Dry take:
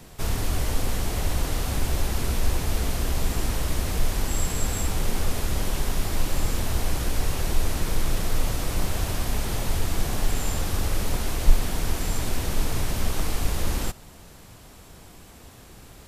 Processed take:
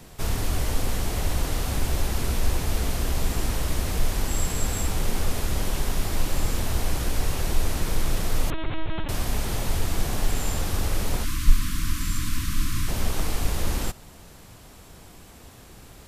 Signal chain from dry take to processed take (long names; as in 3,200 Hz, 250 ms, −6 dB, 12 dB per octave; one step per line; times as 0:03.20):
0:08.50–0:09.09: linear-prediction vocoder at 8 kHz pitch kept
0:11.24–0:12.88: time-frequency box erased 340–970 Hz